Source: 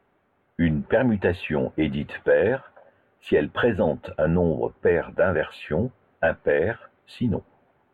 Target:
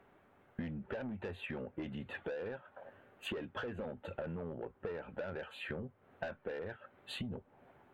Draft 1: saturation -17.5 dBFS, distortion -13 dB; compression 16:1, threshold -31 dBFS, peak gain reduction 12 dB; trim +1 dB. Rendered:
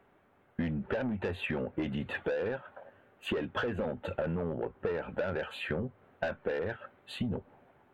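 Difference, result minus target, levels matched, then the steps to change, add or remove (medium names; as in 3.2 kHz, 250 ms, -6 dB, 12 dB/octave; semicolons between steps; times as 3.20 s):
compression: peak gain reduction -8.5 dB
change: compression 16:1, threshold -40 dBFS, peak gain reduction 20.5 dB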